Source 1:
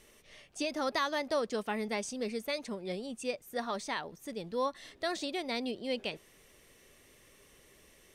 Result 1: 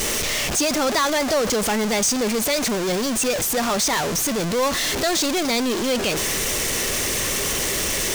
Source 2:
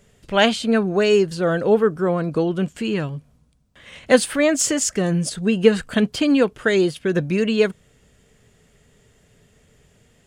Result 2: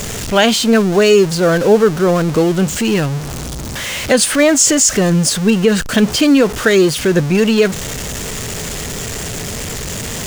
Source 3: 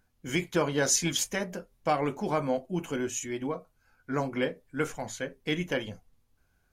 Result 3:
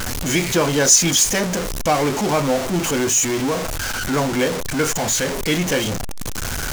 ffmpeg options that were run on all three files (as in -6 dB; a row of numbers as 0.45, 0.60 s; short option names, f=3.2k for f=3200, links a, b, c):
-af "aeval=exprs='val(0)+0.5*0.0596*sgn(val(0))':c=same,equalizer=f=6.4k:t=o:w=0.91:g=5.5,alimiter=level_in=6.5dB:limit=-1dB:release=50:level=0:latency=1,volume=-1dB"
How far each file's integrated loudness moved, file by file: +15.0, +5.5, +12.0 LU